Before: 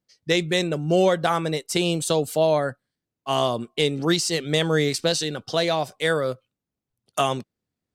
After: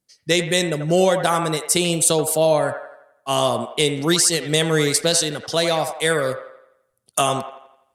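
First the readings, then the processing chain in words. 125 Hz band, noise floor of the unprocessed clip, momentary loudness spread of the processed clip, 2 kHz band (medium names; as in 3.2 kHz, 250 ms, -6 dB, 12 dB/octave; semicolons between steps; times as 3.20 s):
+2.0 dB, under -85 dBFS, 9 LU, +3.5 dB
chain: peaking EQ 10 kHz +13.5 dB 1 oct; on a send: feedback echo behind a band-pass 85 ms, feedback 47%, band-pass 1.1 kHz, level -6 dB; on the sum: trim +2 dB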